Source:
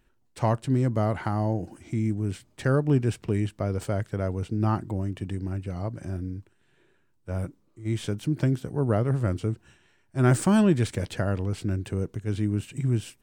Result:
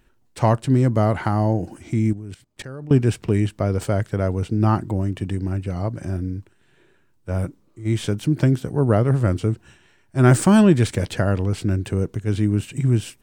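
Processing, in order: 2.13–2.91 s: level held to a coarse grid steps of 20 dB; trim +6.5 dB

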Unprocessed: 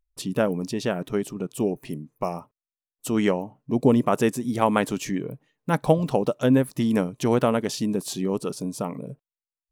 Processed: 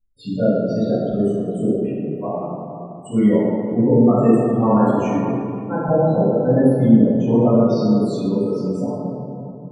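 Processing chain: treble shelf 10 kHz -7 dB; loudest bins only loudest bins 16; reverberation RT60 2.8 s, pre-delay 5 ms, DRR -13 dB; trim -9 dB

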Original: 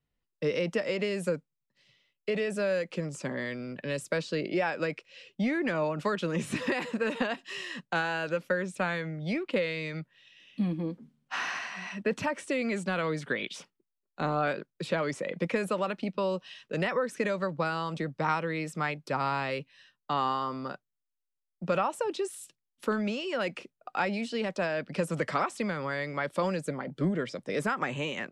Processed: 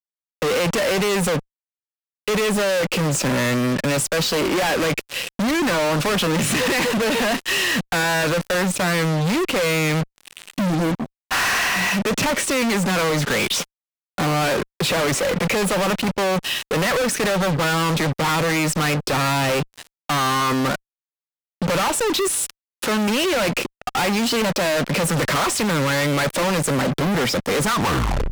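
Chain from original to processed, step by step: tape stop on the ending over 0.64 s; fuzz box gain 52 dB, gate -51 dBFS; trim -5.5 dB

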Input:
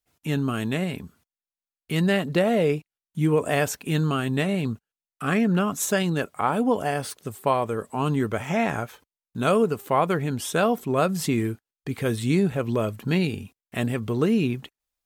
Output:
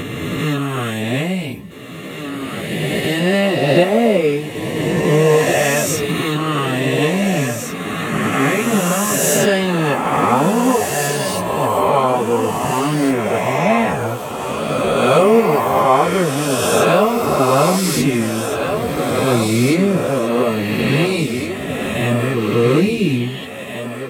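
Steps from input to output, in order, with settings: reverse spectral sustain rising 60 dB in 1.87 s; on a send: thinning echo 1076 ms, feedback 40%, high-pass 230 Hz, level -7 dB; on the sum: plain phase-vocoder stretch 1.6×; peaking EQ 1.5 kHz -7.5 dB 0.27 oct; trim +7.5 dB

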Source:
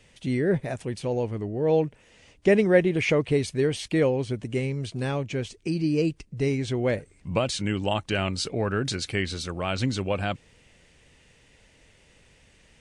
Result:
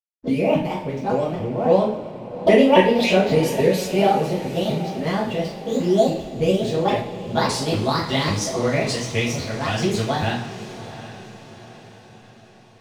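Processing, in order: sawtooth pitch modulation +9 st, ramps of 276 ms; level-controlled noise filter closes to 550 Hz, open at -24 dBFS; hysteresis with a dead band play -46 dBFS; echo that smears into a reverb 768 ms, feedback 49%, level -14 dB; two-slope reverb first 0.44 s, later 3 s, from -19 dB, DRR -6 dB; trim -1 dB

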